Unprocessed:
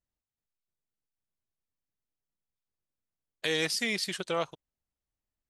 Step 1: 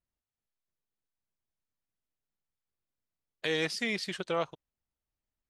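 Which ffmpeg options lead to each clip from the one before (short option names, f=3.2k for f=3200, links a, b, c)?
-af "aemphasis=mode=reproduction:type=50kf"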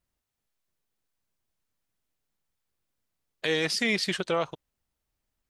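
-af "alimiter=limit=-23dB:level=0:latency=1:release=41,volume=8dB"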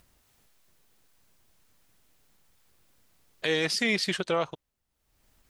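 -af "acompressor=mode=upward:threshold=-49dB:ratio=2.5"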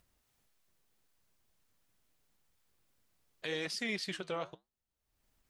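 -af "flanger=delay=1.4:depth=9.7:regen=-77:speed=0.8:shape=triangular,volume=-6dB"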